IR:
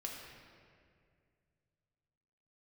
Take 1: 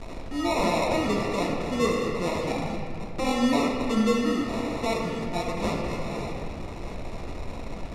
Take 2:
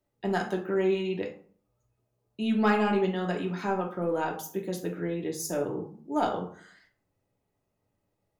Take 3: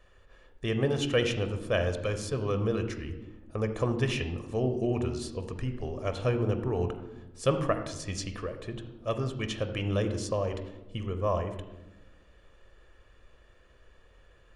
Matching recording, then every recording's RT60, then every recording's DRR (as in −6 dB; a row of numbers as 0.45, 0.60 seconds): 1; 2.2 s, 0.50 s, non-exponential decay; −1.5, 1.0, 7.5 decibels